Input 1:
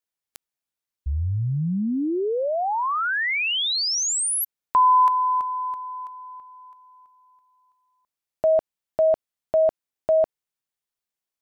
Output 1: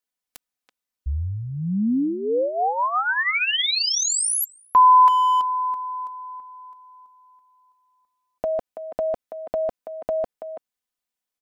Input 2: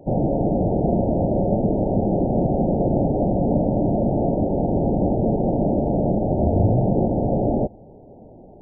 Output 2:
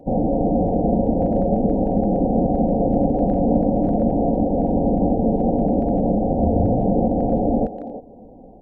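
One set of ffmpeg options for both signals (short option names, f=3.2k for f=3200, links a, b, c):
-filter_complex "[0:a]aecho=1:1:4:0.54,asplit=2[a][b];[b]adelay=330,highpass=300,lowpass=3.4k,asoftclip=type=hard:threshold=-13.5dB,volume=-10dB[c];[a][c]amix=inputs=2:normalize=0"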